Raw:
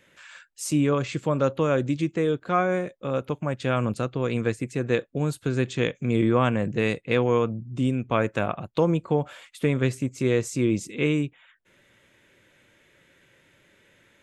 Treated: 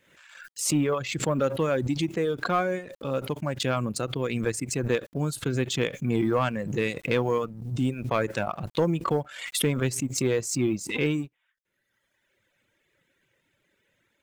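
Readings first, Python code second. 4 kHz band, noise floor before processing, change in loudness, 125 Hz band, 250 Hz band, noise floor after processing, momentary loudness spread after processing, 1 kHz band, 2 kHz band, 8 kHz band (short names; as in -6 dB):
+3.5 dB, -62 dBFS, -2.0 dB, -3.0 dB, -3.0 dB, -76 dBFS, 5 LU, -2.0 dB, -1.0 dB, +7.0 dB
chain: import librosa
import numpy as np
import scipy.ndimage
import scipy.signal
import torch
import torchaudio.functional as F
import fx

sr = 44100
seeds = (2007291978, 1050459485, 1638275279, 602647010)

y = fx.law_mismatch(x, sr, coded='A')
y = fx.dereverb_blind(y, sr, rt60_s=1.4)
y = 10.0 ** (-14.0 / 20.0) * np.tanh(y / 10.0 ** (-14.0 / 20.0))
y = fx.pre_swell(y, sr, db_per_s=69.0)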